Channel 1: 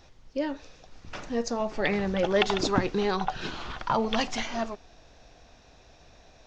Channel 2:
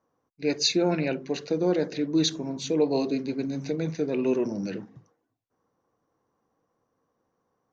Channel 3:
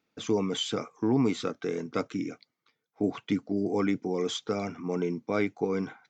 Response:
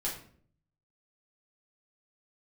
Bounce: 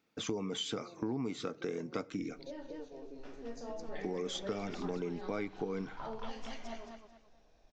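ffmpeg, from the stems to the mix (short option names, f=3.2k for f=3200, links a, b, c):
-filter_complex "[0:a]adelay=2100,volume=-16dB,asplit=3[a][b][c];[b]volume=-6.5dB[d];[c]volume=-5.5dB[e];[1:a]volume=-16dB,asplit=2[f][g];[g]volume=-18dB[h];[2:a]volume=0dB,asplit=3[i][j][k];[i]atrim=end=2.53,asetpts=PTS-STARTPTS,afade=t=out:st=2.526:d=0.004:c=hsin[l];[j]atrim=start=2.53:end=4.03,asetpts=PTS-STARTPTS,volume=0[m];[k]atrim=start=4.03,asetpts=PTS-STARTPTS,afade=t=in:d=0.004:c=hsin[n];[l][m][n]concat=n=3:v=0:a=1,asplit=2[o][p];[p]volume=-22.5dB[q];[a][f]amix=inputs=2:normalize=0,bandpass=f=530:t=q:w=1.3:csg=0,acompressor=threshold=-46dB:ratio=6,volume=0dB[r];[3:a]atrim=start_sample=2205[s];[d][q]amix=inputs=2:normalize=0[t];[t][s]afir=irnorm=-1:irlink=0[u];[e][h]amix=inputs=2:normalize=0,aecho=0:1:220|440|660|880:1|0.29|0.0841|0.0244[v];[o][r][u][v]amix=inputs=4:normalize=0,acompressor=threshold=-35dB:ratio=4"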